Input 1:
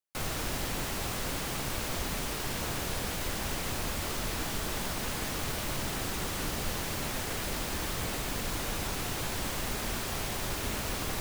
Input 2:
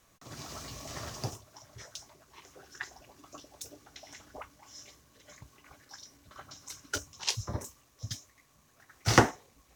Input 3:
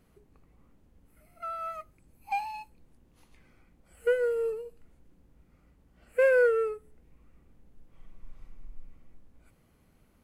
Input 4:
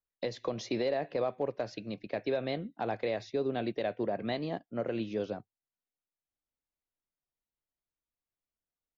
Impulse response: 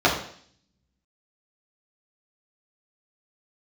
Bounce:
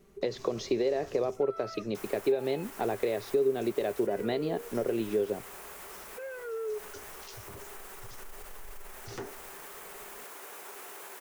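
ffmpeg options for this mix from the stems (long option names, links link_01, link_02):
-filter_complex "[0:a]highpass=790,equalizer=frequency=4200:width_type=o:width=1.6:gain=-11.5,adelay=1800,volume=-4.5dB[link_01];[1:a]volume=-8.5dB[link_02];[2:a]aecho=1:1:5.1:0.86,alimiter=level_in=1dB:limit=-24dB:level=0:latency=1:release=226,volume=-1dB,volume=-1dB[link_03];[3:a]volume=3dB[link_04];[link_01][link_02][link_03]amix=inputs=3:normalize=0,asoftclip=type=hard:threshold=-25dB,alimiter=level_in=12dB:limit=-24dB:level=0:latency=1:release=40,volume=-12dB,volume=0dB[link_05];[link_04][link_05]amix=inputs=2:normalize=0,equalizer=frequency=400:width_type=o:width=0.32:gain=13.5,acompressor=threshold=-27dB:ratio=2.5"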